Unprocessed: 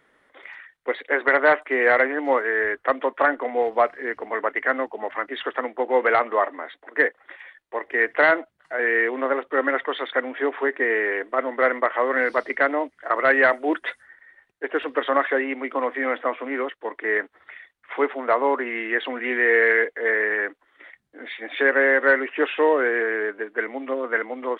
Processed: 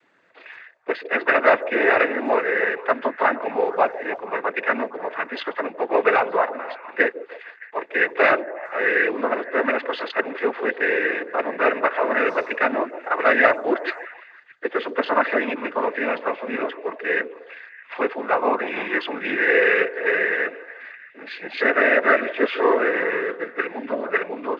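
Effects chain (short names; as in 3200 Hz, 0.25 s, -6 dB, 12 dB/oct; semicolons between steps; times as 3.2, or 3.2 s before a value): noise vocoder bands 16; delay with a stepping band-pass 0.154 s, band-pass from 430 Hz, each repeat 0.7 oct, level -11 dB; gain +1 dB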